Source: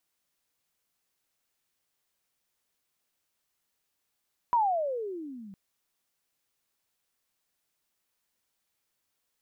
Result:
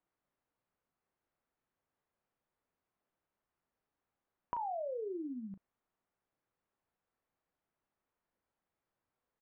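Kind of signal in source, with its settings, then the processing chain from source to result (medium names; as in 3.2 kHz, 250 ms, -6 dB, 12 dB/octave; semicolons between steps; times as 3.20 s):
gliding synth tone sine, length 1.01 s, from 993 Hz, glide -29 st, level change -23 dB, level -20 dB
low-pass 1.3 kHz 12 dB/octave; compression 6:1, threshold -38 dBFS; doubling 36 ms -10.5 dB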